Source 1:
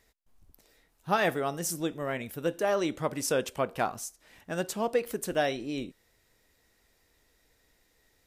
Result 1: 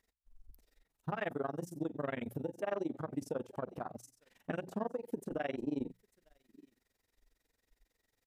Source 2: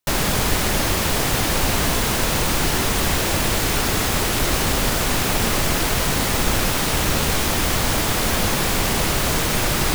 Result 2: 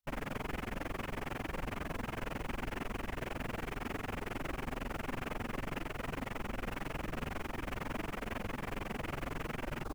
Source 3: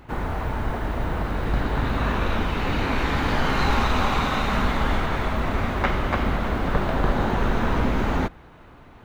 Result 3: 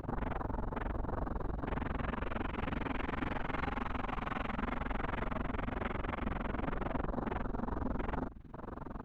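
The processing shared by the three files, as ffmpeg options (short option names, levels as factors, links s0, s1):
-filter_complex "[0:a]equalizer=f=80:w=3.2:g=-3,acompressor=threshold=0.01:ratio=3,asplit=2[s0][s1];[s1]aecho=0:1:891:0.0944[s2];[s0][s2]amix=inputs=2:normalize=0,tremolo=f=22:d=0.947,alimiter=level_in=2.99:limit=0.0631:level=0:latency=1:release=97,volume=0.335,afwtdn=0.00282,equalizer=f=250:w=3.9:g=3,bandreject=f=60:t=h:w=6,bandreject=f=120:t=h:w=6,bandreject=f=180:t=h:w=6,volume=2.51"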